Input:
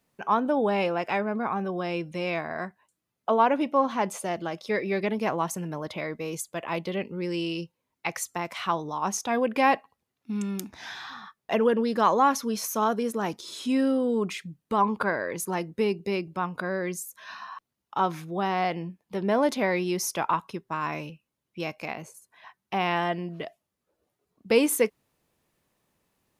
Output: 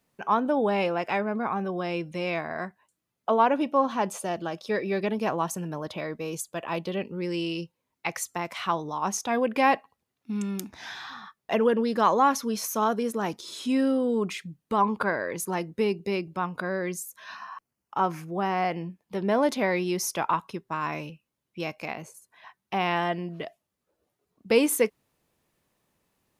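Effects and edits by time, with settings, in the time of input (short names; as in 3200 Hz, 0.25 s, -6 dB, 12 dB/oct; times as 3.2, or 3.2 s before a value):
3.48–7.19 notch 2100 Hz, Q 8.2
17.36–18.76 bell 3700 Hz -12 dB 0.32 oct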